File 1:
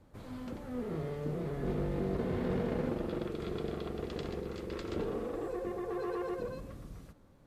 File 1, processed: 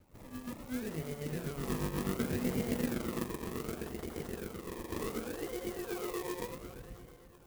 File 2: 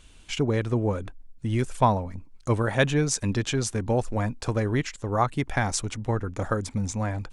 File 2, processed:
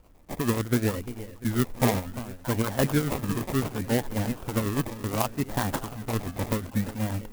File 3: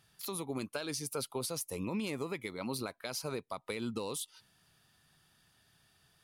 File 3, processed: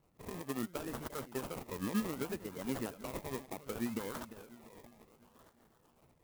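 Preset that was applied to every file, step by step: dynamic bell 240 Hz, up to +6 dB, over -44 dBFS, Q 2.5; harmonic tremolo 8.1 Hz, depth 70%, crossover 690 Hz; two-band feedback delay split 740 Hz, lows 347 ms, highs 625 ms, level -13.5 dB; decimation with a swept rate 24×, swing 60% 0.67 Hz; sampling jitter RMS 0.056 ms

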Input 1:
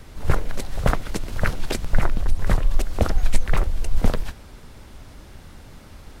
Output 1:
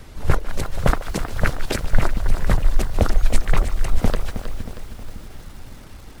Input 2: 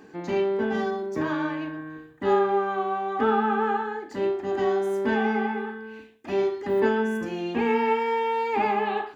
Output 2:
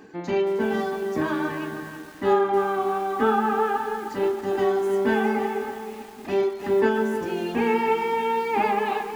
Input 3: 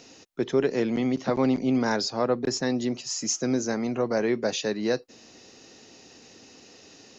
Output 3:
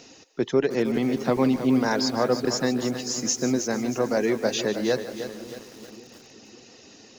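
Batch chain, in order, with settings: reverb removal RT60 0.5 s; two-band feedback delay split 390 Hz, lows 557 ms, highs 149 ms, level -14.5 dB; bit-crushed delay 316 ms, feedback 55%, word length 7-bit, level -10 dB; trim +2 dB

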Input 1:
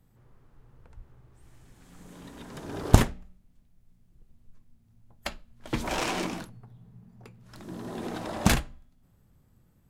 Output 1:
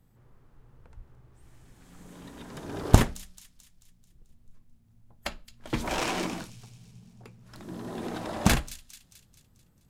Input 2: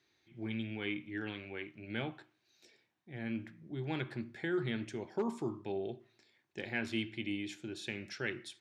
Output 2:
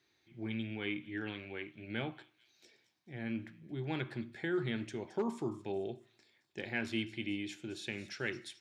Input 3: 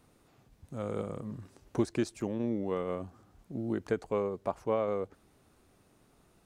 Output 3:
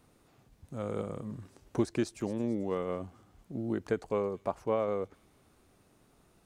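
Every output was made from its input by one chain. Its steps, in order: feedback echo behind a high-pass 219 ms, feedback 50%, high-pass 4.2 kHz, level -12 dB

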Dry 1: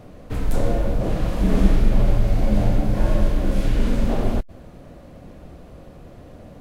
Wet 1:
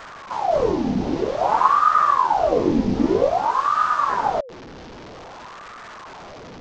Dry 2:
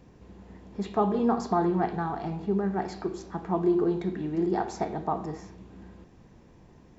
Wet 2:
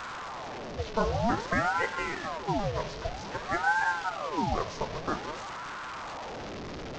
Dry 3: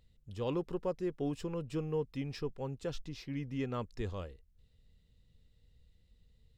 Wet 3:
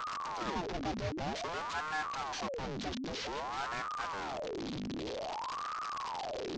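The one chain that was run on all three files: one-bit delta coder 32 kbps, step -30 dBFS; ring modulator with a swept carrier 730 Hz, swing 70%, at 0.52 Hz

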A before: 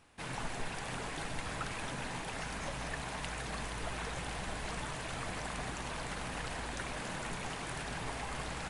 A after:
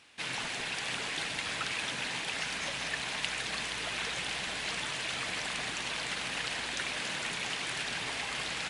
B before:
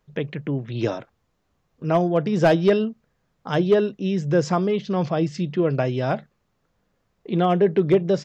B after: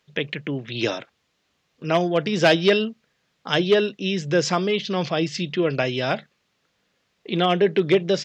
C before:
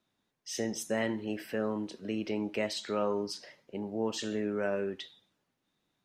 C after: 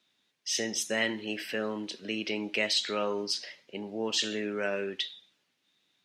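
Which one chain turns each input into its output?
frequency weighting D

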